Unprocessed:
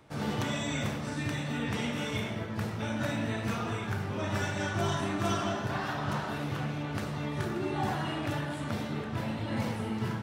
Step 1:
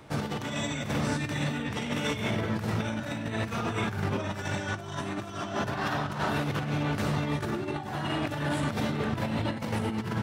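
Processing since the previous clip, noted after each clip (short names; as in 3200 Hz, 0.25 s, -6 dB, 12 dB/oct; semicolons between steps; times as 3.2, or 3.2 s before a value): negative-ratio compressor -35 dBFS, ratio -0.5; gain +5 dB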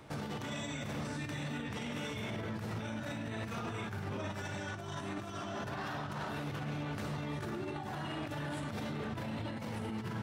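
limiter -27.5 dBFS, peak gain reduction 10.5 dB; gain -3.5 dB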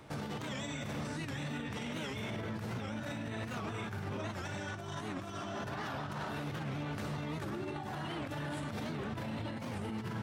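record warp 78 rpm, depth 160 cents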